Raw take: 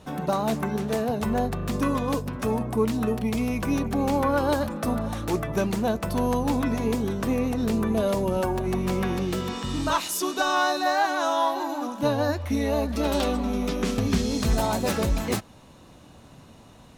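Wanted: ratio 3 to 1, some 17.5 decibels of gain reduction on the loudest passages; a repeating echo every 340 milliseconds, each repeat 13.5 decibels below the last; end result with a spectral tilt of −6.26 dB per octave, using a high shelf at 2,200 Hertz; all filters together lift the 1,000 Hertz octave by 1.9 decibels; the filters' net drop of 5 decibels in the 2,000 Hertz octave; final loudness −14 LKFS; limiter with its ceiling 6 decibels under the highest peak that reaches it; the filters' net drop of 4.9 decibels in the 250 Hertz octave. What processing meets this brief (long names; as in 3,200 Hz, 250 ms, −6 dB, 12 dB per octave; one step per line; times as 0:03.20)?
parametric band 250 Hz −6 dB
parametric band 1,000 Hz +5.5 dB
parametric band 2,000 Hz −6.5 dB
high-shelf EQ 2,200 Hz −7.5 dB
downward compressor 3 to 1, threshold −43 dBFS
brickwall limiter −33.5 dBFS
repeating echo 340 ms, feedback 21%, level −13.5 dB
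level +29 dB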